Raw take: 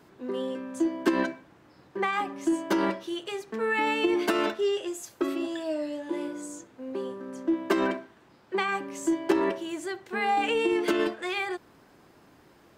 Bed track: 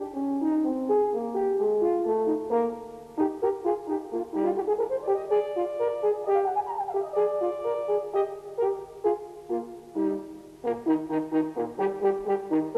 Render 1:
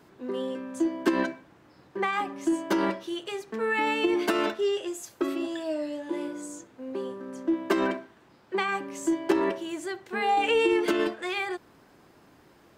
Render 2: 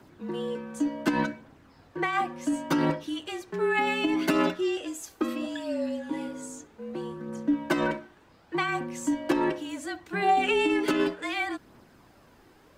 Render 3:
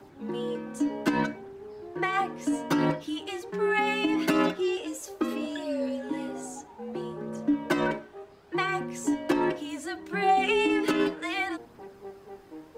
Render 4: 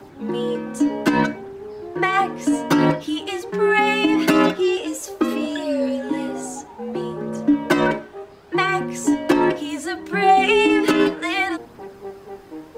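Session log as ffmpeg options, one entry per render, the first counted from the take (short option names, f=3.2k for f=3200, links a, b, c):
-filter_complex "[0:a]asettb=1/sr,asplit=3[a][b][c];[a]atrim=end=10.224[d];[b]atrim=start=10.22:end=10.86,asetpts=PTS-STARTPTS,afade=t=in:d=0.004:c=qsin,afade=t=out:st=0.636:d=0.004:c=qsin,aecho=1:1:2.2:0.52,atrim=end_sample=28224[e];[c]atrim=start=10.856[f];[d][e]acrossfade=d=0.004:c1=hsin:c2=qsin[g];[g][f]acrossfade=d=0.004:c1=qsin:c2=hsin"
-af "afreqshift=-38,aphaser=in_gain=1:out_gain=1:delay=2.7:decay=0.32:speed=0.68:type=triangular"
-filter_complex "[1:a]volume=-19dB[a];[0:a][a]amix=inputs=2:normalize=0"
-af "volume=8.5dB,alimiter=limit=-3dB:level=0:latency=1"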